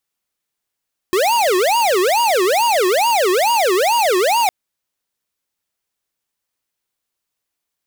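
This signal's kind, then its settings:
siren wail 358–953 Hz 2.3 per second square −15 dBFS 3.36 s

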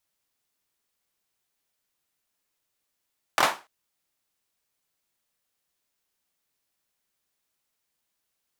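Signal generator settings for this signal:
synth clap length 0.29 s, bursts 3, apart 24 ms, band 960 Hz, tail 0.29 s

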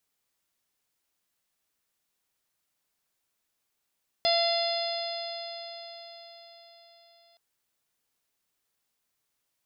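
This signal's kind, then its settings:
stiff-string partials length 3.12 s, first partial 679 Hz, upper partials −17.5/−11.5/−14/−6/−5/−4 dB, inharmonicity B 0.0021, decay 4.80 s, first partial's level −23.5 dB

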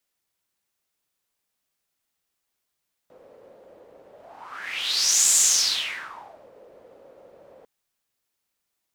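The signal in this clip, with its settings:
pass-by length 4.55 s, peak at 0:02.25, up 1.35 s, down 1.21 s, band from 520 Hz, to 7,300 Hz, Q 5.5, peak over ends 33 dB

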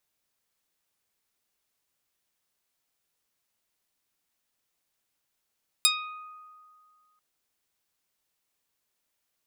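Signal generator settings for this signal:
Karplus-Strong string D#6, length 1.34 s, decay 2.22 s, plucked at 0.09, medium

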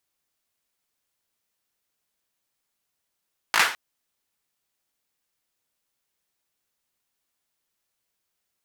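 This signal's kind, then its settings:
synth clap length 0.21 s, apart 18 ms, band 1,500 Hz, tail 0.39 s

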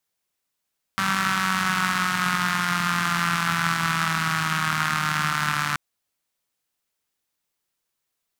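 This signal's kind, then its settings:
pulse-train model of a four-cylinder engine, changing speed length 4.78 s, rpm 5,800, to 4,400, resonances 170/1,300 Hz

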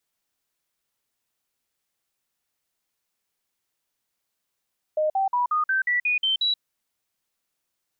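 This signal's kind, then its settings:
stepped sweep 616 Hz up, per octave 3, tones 9, 0.13 s, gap 0.05 s −19.5 dBFS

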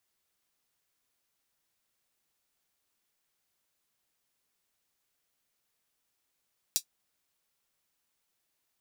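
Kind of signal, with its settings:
closed synth hi-hat, high-pass 4,700 Hz, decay 0.09 s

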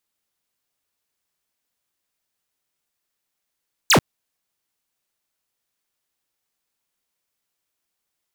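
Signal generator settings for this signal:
single falling chirp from 8,400 Hz, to 90 Hz, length 0.09 s square, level −13 dB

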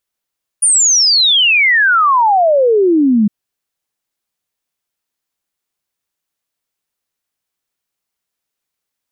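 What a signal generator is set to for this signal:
exponential sine sweep 9,600 Hz → 200 Hz 2.66 s −7.5 dBFS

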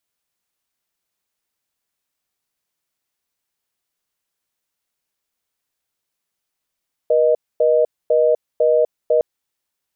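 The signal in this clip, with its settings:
call progress tone reorder tone, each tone −14.5 dBFS 2.11 s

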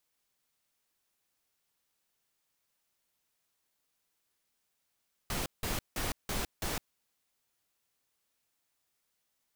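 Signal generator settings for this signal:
noise bursts pink, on 0.16 s, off 0.17 s, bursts 5, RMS −34 dBFS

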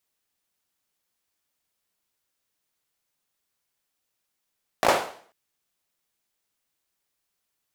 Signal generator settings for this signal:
synth clap length 0.49 s, bursts 4, apart 18 ms, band 640 Hz, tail 0.50 s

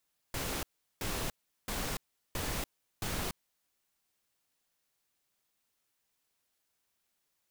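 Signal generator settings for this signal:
noise bursts pink, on 0.29 s, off 0.38 s, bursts 5, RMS −35.5 dBFS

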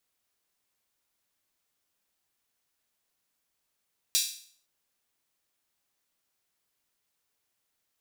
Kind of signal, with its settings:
open synth hi-hat length 0.51 s, high-pass 4,000 Hz, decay 0.52 s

